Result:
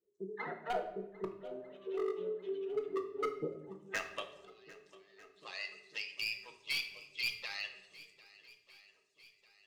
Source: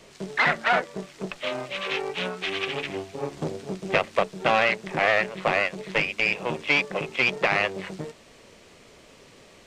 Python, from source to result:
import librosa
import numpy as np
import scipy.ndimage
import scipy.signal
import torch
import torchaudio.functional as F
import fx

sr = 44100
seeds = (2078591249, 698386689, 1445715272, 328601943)

p1 = fx.bin_expand(x, sr, power=2.0)
p2 = fx.level_steps(p1, sr, step_db=11)
p3 = p1 + (p2 * librosa.db_to_amplitude(1.5))
p4 = fx.gate_flip(p3, sr, shuts_db=-26.0, range_db=-26, at=(4.31, 5.36))
p5 = fx.filter_sweep_bandpass(p4, sr, from_hz=410.0, to_hz=4500.0, start_s=3.39, end_s=4.35, q=5.6)
p6 = 10.0 ** (-30.5 / 20.0) * (np.abs((p5 / 10.0 ** (-30.5 / 20.0) + 3.0) % 4.0 - 2.0) - 1.0)
p7 = p6 + fx.echo_swing(p6, sr, ms=1247, ratio=1.5, feedback_pct=48, wet_db=-20.5, dry=0)
p8 = fx.room_shoebox(p7, sr, seeds[0], volume_m3=290.0, walls='mixed', distance_m=0.59)
y = p8 * librosa.db_to_amplitude(2.5)